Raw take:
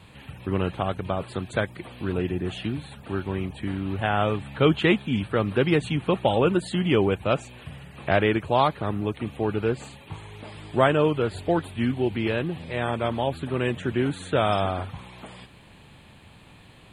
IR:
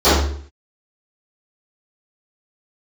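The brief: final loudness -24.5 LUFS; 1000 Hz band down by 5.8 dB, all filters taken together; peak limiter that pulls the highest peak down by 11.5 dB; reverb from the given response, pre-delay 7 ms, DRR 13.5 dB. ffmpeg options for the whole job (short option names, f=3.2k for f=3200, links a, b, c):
-filter_complex "[0:a]equalizer=f=1k:t=o:g=-8.5,alimiter=limit=-20dB:level=0:latency=1,asplit=2[a][b];[1:a]atrim=start_sample=2205,adelay=7[c];[b][c]afir=irnorm=-1:irlink=0,volume=-41.5dB[d];[a][d]amix=inputs=2:normalize=0,volume=7dB"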